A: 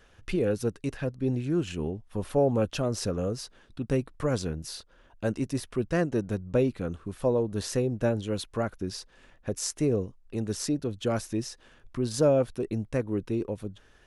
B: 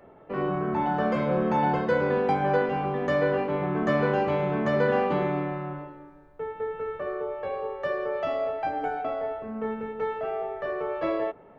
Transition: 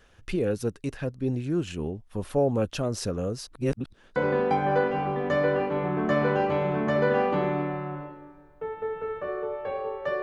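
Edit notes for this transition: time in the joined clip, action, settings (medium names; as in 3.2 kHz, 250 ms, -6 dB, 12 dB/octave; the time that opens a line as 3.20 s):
A
3.47–4.16 s: reverse
4.16 s: go over to B from 1.94 s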